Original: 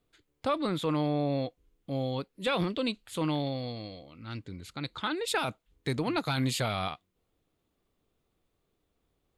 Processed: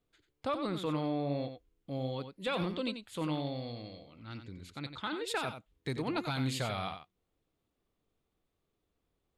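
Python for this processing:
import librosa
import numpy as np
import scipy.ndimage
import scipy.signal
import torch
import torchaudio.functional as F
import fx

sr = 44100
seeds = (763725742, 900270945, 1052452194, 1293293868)

p1 = fx.high_shelf(x, sr, hz=8400.0, db=-4.5)
p2 = p1 + fx.echo_single(p1, sr, ms=91, db=-9.0, dry=0)
y = p2 * 10.0 ** (-5.0 / 20.0)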